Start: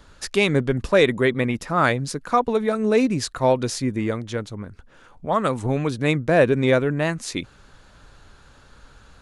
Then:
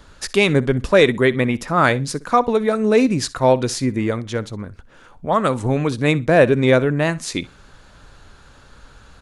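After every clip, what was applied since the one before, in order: feedback delay 62 ms, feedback 19%, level -20 dB; trim +3.5 dB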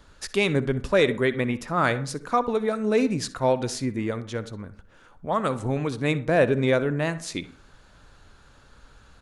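reverberation RT60 0.50 s, pre-delay 48 ms, DRR 15 dB; trim -7 dB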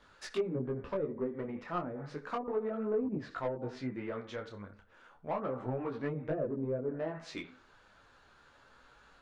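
low-pass that closes with the level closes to 320 Hz, closed at -18 dBFS; overdrive pedal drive 16 dB, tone 2.1 kHz, clips at -11.5 dBFS; detune thickener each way 11 cents; trim -8.5 dB

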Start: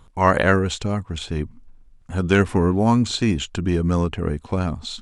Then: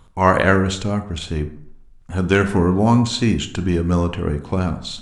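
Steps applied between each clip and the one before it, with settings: reverberation RT60 0.70 s, pre-delay 22 ms, DRR 9 dB; trim +1.5 dB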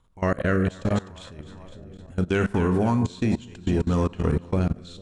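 two-band feedback delay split 1 kHz, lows 450 ms, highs 253 ms, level -11.5 dB; rotary cabinet horn 0.65 Hz; level held to a coarse grid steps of 21 dB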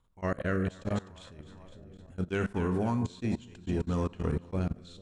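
attacks held to a fixed rise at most 550 dB/s; trim -7.5 dB

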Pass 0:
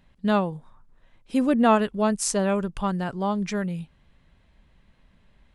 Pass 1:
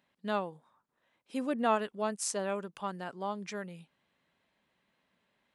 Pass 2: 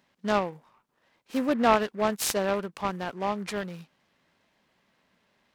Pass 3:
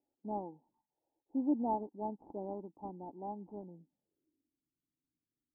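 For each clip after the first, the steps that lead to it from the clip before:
Bessel high-pass 340 Hz, order 2; trim -8 dB
delay time shaken by noise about 1.2 kHz, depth 0.042 ms; trim +7 dB
touch-sensitive phaser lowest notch 190 Hz, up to 2.7 kHz, full sweep at -30.5 dBFS; low-pass sweep 830 Hz -> 180 Hz, 3.65–4.66 s; cascade formant filter u; trim -3 dB

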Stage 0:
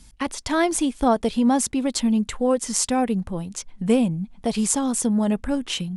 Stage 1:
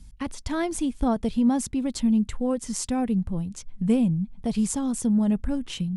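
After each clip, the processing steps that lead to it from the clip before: tone controls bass +13 dB, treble 0 dB; trim -8.5 dB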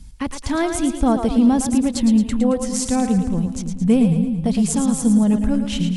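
two-band feedback delay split 350 Hz, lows 283 ms, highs 111 ms, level -7 dB; trim +6 dB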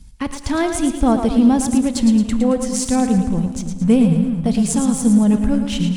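in parallel at -3.5 dB: crossover distortion -34.5 dBFS; on the sum: Schroeder reverb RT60 1.1 s, combs from 31 ms, DRR 14.5 dB; trim -2.5 dB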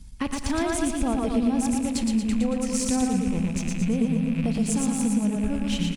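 rattle on loud lows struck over -27 dBFS, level -24 dBFS; compression, threshold -21 dBFS, peak gain reduction 12 dB; on a send: feedback delay 117 ms, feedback 47%, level -4 dB; on the sum: trim -2 dB

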